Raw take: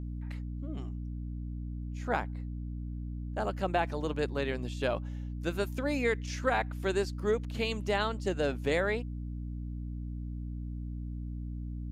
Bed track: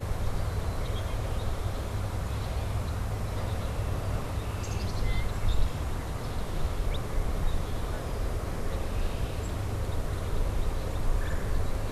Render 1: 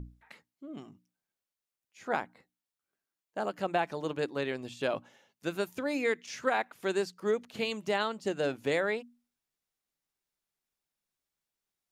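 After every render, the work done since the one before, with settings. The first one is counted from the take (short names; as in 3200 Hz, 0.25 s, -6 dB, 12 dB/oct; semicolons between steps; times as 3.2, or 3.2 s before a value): notches 60/120/180/240/300 Hz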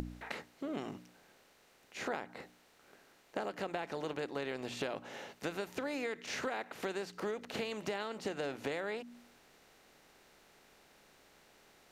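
per-bin compression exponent 0.6; compressor 8:1, threshold -35 dBFS, peak gain reduction 13.5 dB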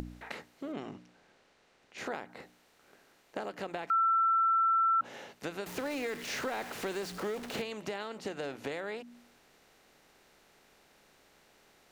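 0.72–1.98 air absorption 66 m; 3.9–5.01 bleep 1340 Hz -23.5 dBFS; 5.66–7.62 zero-crossing step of -40 dBFS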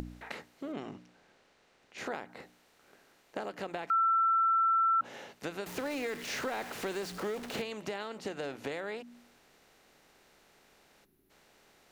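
11.05–11.3 spectral gain 430–10000 Hz -18 dB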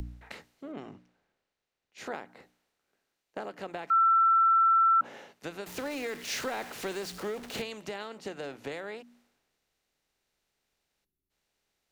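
three-band expander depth 70%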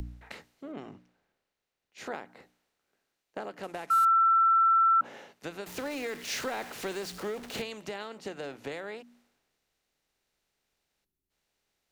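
3.63–4.05 CVSD 64 kbps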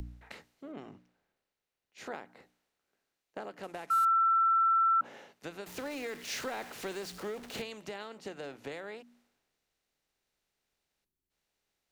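gain -3.5 dB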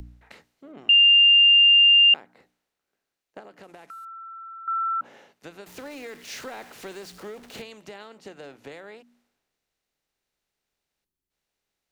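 0.89–2.14 bleep 2800 Hz -11.5 dBFS; 3.39–4.68 compressor 8:1, threshold -40 dBFS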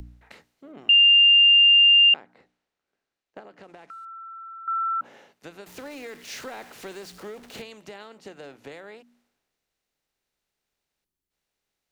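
2.09–4.09 air absorption 66 m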